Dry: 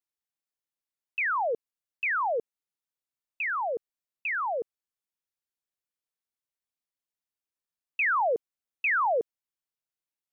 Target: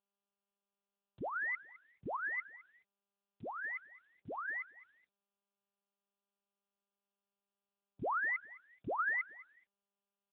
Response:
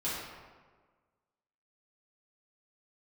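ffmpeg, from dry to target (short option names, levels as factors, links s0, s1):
-af "aecho=1:1:211|422:0.126|0.0252,lowpass=f=2100:t=q:w=0.5098,lowpass=f=2100:t=q:w=0.6013,lowpass=f=2100:t=q:w=0.9,lowpass=f=2100:t=q:w=2.563,afreqshift=-2500,volume=0.398" -ar 8000 -c:a libopencore_amrnb -b:a 10200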